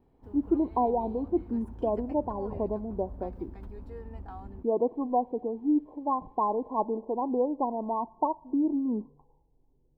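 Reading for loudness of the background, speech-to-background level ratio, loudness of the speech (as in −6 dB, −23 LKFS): −45.0 LKFS, 15.0 dB, −30.0 LKFS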